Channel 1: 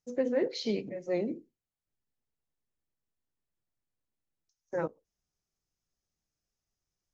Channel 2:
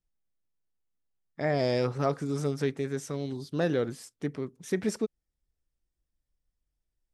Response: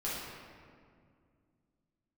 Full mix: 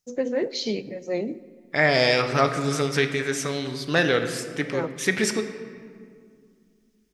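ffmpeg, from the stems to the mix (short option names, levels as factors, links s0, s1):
-filter_complex "[0:a]volume=1.41,asplit=2[s0][s1];[s1]volume=0.0944[s2];[1:a]equalizer=f=2200:w=0.53:g=13,adelay=350,volume=1.06,asplit=2[s3][s4];[s4]volume=0.316[s5];[2:a]atrim=start_sample=2205[s6];[s2][s5]amix=inputs=2:normalize=0[s7];[s7][s6]afir=irnorm=-1:irlink=0[s8];[s0][s3][s8]amix=inputs=3:normalize=0,highshelf=f=3400:g=8"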